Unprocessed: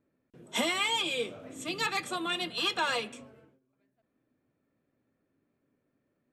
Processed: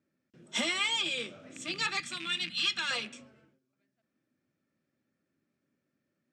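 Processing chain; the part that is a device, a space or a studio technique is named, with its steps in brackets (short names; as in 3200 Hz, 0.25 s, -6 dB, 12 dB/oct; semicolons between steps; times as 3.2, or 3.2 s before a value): car door speaker with a rattle (rattling part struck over -44 dBFS, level -30 dBFS; speaker cabinet 110–8400 Hz, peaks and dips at 120 Hz -5 dB, 280 Hz -5 dB, 450 Hz -10 dB, 710 Hz -7 dB, 1000 Hz -8 dB, 5300 Hz +5 dB); 2–2.91 EQ curve 240 Hz 0 dB, 480 Hz -15 dB, 2000 Hz +1 dB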